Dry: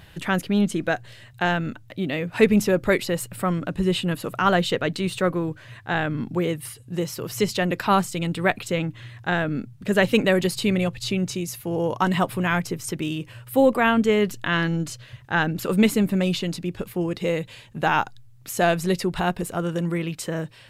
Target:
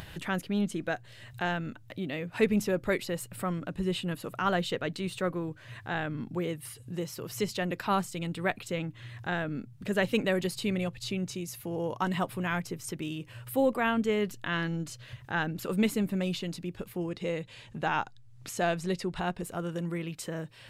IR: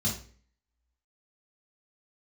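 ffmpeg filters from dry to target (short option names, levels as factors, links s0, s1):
-filter_complex "[0:a]asettb=1/sr,asplit=3[s0][s1][s2];[s0]atrim=end=17.094[s3];[s1]atrim=start=17.09:end=19.43,asetpts=PTS-STARTPTS,afade=t=in:d=0.004:c=qsin,afade=t=out:st=2.336:d=0.004:c=qsin,lowpass=8900[s4];[s2]atrim=start=19.426[s5];[s3][s4]acrossfade=d=0.004:c1=hsin:c2=qsin[s6];[s6][s5]acrossfade=d=0.004:c1=qsin:c2=hsin,acompressor=mode=upward:threshold=0.0501:ratio=2.5,volume=0.376"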